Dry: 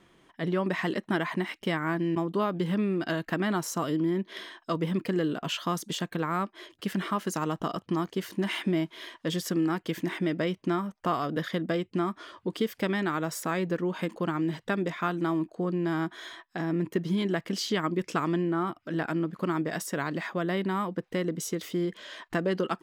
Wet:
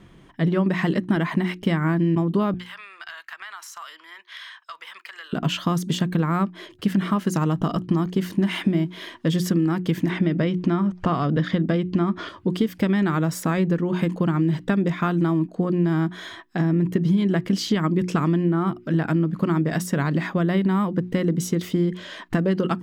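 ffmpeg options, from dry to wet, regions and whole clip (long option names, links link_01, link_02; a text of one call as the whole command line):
ffmpeg -i in.wav -filter_complex "[0:a]asettb=1/sr,asplit=3[link_01][link_02][link_03];[link_01]atrim=end=2.544[link_04];[link_02]atrim=start=2.54:end=5.33,asetpts=PTS-STARTPTS,afade=type=in:duration=0.004:curve=qsin,afade=type=out:start_time=2.786:duration=0.004:curve=qsin,highpass=frequency=1100:width=0.5412,highpass=frequency=1100:width=1.3066,acompressor=threshold=-38dB:ratio=6:attack=3.2:release=140:knee=1:detection=peak,highshelf=frequency=5700:gain=-4.5[link_05];[link_03]atrim=start=5.326[link_06];[link_04][link_05]acrossfade=duration=0.004:curve1=hsin:curve2=qsin[link_07];[link_07][link_06]acrossfade=duration=0.004:curve1=qsin:curve2=hsin,asettb=1/sr,asplit=3[link_08][link_09][link_10];[link_08]atrim=end=10.104[link_11];[link_09]atrim=start=10.1:end=12.29,asetpts=PTS-STARTPTS,afade=type=in:duration=0.004:curve=qsin,afade=type=out:start_time=2.186:duration=0.004:curve=qsin,lowpass=5700,acompressor=mode=upward:threshold=-30dB:ratio=2.5:attack=3.2:release=140:knee=2.83:detection=peak[link_12];[link_10]atrim=start=12.286[link_13];[link_11][link_12]acrossfade=duration=0.004:curve1=hsin:curve2=qsin[link_14];[link_14][link_13]acrossfade=duration=0.004:curve1=qsin:curve2=hsin,bass=frequency=250:gain=13,treble=frequency=4000:gain=-2,bandreject=frequency=60:width_type=h:width=6,bandreject=frequency=120:width_type=h:width=6,bandreject=frequency=180:width_type=h:width=6,bandreject=frequency=240:width_type=h:width=6,bandreject=frequency=300:width_type=h:width=6,bandreject=frequency=360:width_type=h:width=6,acompressor=threshold=-22dB:ratio=6,volume=5.5dB" out.wav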